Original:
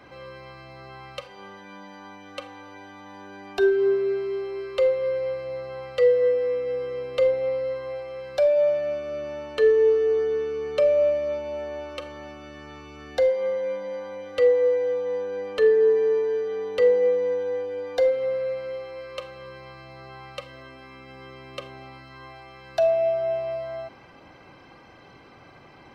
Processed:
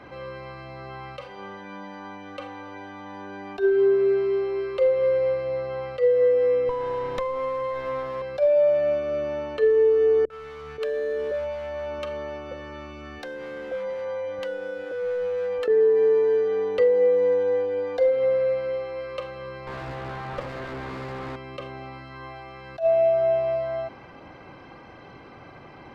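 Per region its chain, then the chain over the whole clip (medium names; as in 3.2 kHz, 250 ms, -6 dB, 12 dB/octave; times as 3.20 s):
6.69–8.22 s: comb filter that takes the minimum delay 0.54 ms + peaking EQ 780 Hz +5 dB 1.2 oct + compression 10:1, threshold -28 dBFS
10.25–15.68 s: compression 12:1, threshold -26 dBFS + hard clipper -28.5 dBFS + three bands offset in time lows, highs, mids 50/530 ms, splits 200/680 Hz
19.67–21.36 s: one-bit delta coder 16 kbps, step -31.5 dBFS + sliding maximum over 9 samples
whole clip: treble shelf 4 kHz -11.5 dB; compression, threshold -21 dBFS; attacks held to a fixed rise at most 250 dB/s; trim +5 dB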